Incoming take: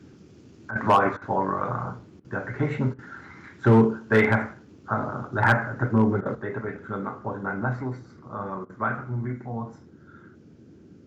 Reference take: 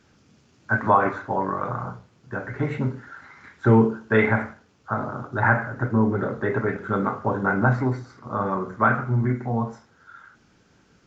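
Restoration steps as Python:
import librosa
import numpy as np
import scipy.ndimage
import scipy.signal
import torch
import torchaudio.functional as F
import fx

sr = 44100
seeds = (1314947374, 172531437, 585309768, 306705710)

y = fx.fix_declip(x, sr, threshold_db=-10.5)
y = fx.fix_interpolate(y, sr, at_s=(0.71, 1.17, 2.2, 2.94, 6.21, 8.65), length_ms=45.0)
y = fx.noise_reduce(y, sr, print_start_s=10.33, print_end_s=10.83, reduce_db=8.0)
y = fx.fix_level(y, sr, at_s=6.35, step_db=7.5)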